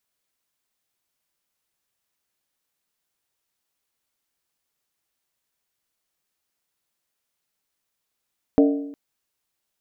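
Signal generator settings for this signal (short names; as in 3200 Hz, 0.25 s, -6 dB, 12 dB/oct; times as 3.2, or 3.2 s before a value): skin hit length 0.36 s, lowest mode 284 Hz, decay 0.82 s, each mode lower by 5 dB, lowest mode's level -11 dB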